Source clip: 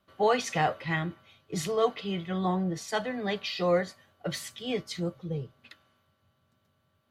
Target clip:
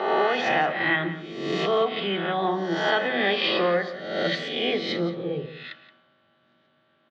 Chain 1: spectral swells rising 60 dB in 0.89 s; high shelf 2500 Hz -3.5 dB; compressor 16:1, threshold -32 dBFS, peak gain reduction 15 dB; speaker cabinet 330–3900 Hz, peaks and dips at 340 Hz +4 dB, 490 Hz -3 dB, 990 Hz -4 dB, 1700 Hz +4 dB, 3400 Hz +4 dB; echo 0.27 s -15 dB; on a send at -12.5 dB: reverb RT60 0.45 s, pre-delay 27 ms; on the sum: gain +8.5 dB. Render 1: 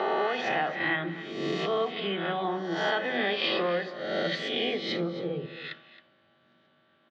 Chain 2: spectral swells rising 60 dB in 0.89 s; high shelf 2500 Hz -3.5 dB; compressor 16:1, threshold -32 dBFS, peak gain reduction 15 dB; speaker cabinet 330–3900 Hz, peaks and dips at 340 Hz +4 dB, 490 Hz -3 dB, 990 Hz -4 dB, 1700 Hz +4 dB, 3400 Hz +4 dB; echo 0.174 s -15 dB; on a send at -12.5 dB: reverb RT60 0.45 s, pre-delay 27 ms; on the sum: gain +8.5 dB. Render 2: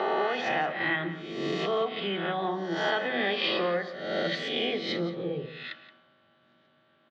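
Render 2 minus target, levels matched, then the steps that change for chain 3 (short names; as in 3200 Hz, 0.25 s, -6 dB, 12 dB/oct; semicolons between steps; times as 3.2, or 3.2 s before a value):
compressor: peak gain reduction +5.5 dB
change: compressor 16:1, threshold -26 dBFS, peak gain reduction 9.5 dB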